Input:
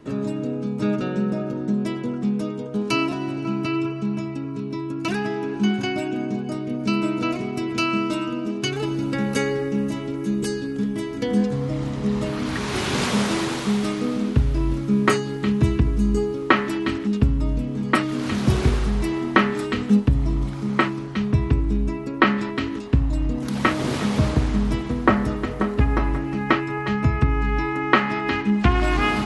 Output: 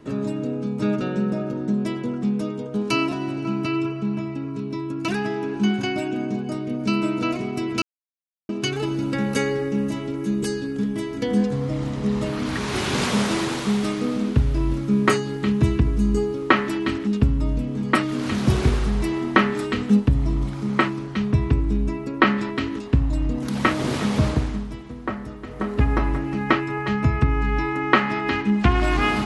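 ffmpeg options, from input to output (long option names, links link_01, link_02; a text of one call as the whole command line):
ffmpeg -i in.wav -filter_complex "[0:a]asettb=1/sr,asplit=3[link_01][link_02][link_03];[link_01]atrim=end=3.964[link_04];[link_02]atrim=start=3.96:end=4.48,asetpts=PTS-STARTPTS,afade=type=in:duration=0.004:curve=qsin,afade=type=out:start_time=0.516:duration=0.004:curve=qsin,acrossover=split=4000[link_05][link_06];[link_06]acompressor=threshold=-59dB:ratio=4:attack=1:release=60[link_07];[link_05][link_07]amix=inputs=2:normalize=0[link_08];[link_03]atrim=start=4.476[link_09];[link_04][link_08]acrossfade=duration=0.004:curve1=hsin:curve2=qsin[link_10];[link_10][link_09]acrossfade=duration=0.004:curve1=qsin:curve2=hsin,asplit=5[link_11][link_12][link_13][link_14][link_15];[link_11]atrim=end=7.82,asetpts=PTS-STARTPTS,afade=type=out:start_time=7.816:duration=0.004:curve=hsin[link_16];[link_12]atrim=start=7.82:end=8.49,asetpts=PTS-STARTPTS,volume=0[link_17];[link_13]atrim=start=8.49:end=24.68,asetpts=PTS-STARTPTS,afade=type=in:duration=0.004:curve=hsin,afade=type=out:start_time=15.79:duration=0.4:silence=0.281838[link_18];[link_14]atrim=start=24.68:end=25.43,asetpts=PTS-STARTPTS,volume=-11dB[link_19];[link_15]atrim=start=25.43,asetpts=PTS-STARTPTS,afade=type=in:duration=0.4:silence=0.281838[link_20];[link_16][link_17][link_18][link_19][link_20]concat=n=5:v=0:a=1" out.wav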